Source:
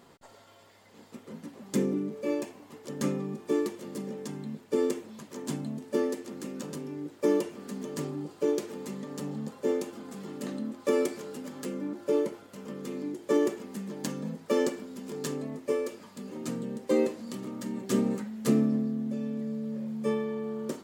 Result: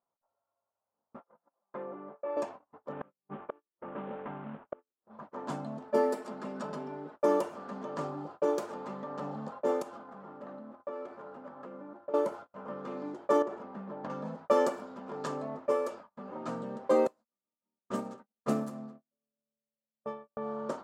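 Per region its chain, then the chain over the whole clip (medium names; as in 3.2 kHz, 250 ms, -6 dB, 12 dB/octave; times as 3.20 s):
1.20–2.37 s: three-band isolator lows -15 dB, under 420 Hz, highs -22 dB, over 3.2 kHz + comb 5.8 ms, depth 38% + compression 2.5:1, threshold -38 dBFS
2.92–5.06 s: CVSD coder 16 kbps + inverted gate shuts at -24 dBFS, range -32 dB
5.88–7.16 s: band-stop 6.4 kHz, Q 11 + comb 4.7 ms, depth 69%
9.82–12.14 s: CVSD coder 64 kbps + compression 3:1, threshold -42 dBFS
13.42–14.10 s: tape spacing loss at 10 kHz 21 dB + compression 3:1, threshold -32 dBFS
17.07–20.37 s: treble shelf 4.3 kHz +7.5 dB + feedback delay 216 ms, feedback 37%, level -10.5 dB + upward expansion 2.5:1, over -41 dBFS
whole clip: gate -45 dBFS, range -35 dB; level-controlled noise filter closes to 1.2 kHz, open at -26.5 dBFS; high-order bell 910 Hz +14 dB; trim -5.5 dB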